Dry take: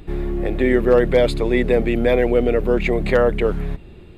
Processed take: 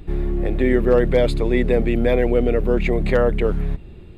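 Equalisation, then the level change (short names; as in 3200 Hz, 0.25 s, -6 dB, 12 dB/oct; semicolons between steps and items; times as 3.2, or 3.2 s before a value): low shelf 230 Hz +6 dB; -3.0 dB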